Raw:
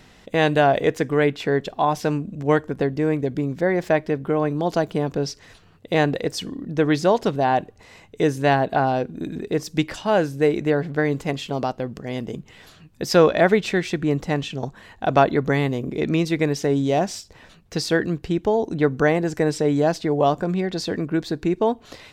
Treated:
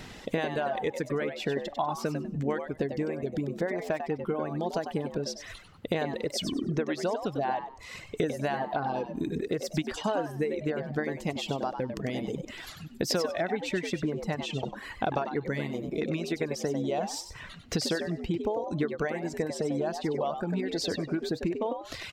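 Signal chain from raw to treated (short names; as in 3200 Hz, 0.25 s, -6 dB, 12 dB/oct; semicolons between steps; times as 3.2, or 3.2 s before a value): compressor 8:1, threshold -32 dBFS, peak gain reduction 22 dB; frequency-shifting echo 97 ms, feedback 37%, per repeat +76 Hz, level -5.5 dB; reverb removal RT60 1.3 s; gain +5.5 dB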